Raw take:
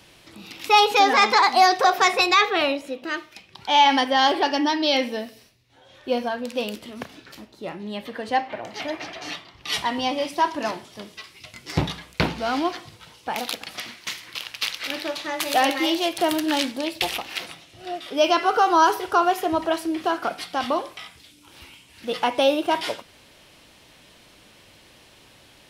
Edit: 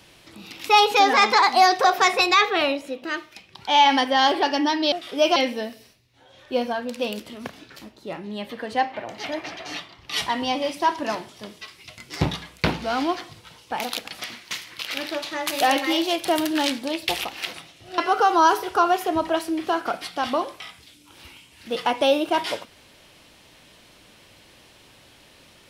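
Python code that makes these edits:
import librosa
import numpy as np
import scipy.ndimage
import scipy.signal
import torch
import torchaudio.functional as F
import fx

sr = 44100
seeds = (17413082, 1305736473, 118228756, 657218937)

y = fx.edit(x, sr, fx.cut(start_s=14.43, length_s=0.37),
    fx.move(start_s=17.91, length_s=0.44, to_s=4.92), tone=tone)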